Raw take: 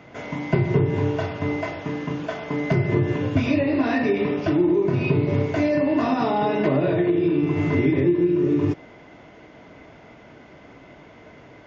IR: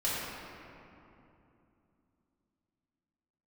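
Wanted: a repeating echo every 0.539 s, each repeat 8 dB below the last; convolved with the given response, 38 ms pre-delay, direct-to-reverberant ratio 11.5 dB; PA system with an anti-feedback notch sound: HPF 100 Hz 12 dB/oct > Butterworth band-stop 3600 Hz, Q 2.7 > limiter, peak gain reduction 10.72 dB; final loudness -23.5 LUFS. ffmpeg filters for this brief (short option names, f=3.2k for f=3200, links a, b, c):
-filter_complex "[0:a]aecho=1:1:539|1078|1617|2156|2695:0.398|0.159|0.0637|0.0255|0.0102,asplit=2[a][b];[1:a]atrim=start_sample=2205,adelay=38[c];[b][c]afir=irnorm=-1:irlink=0,volume=-20dB[d];[a][d]amix=inputs=2:normalize=0,highpass=100,asuperstop=centerf=3600:order=8:qfactor=2.7,volume=3.5dB,alimiter=limit=-15dB:level=0:latency=1"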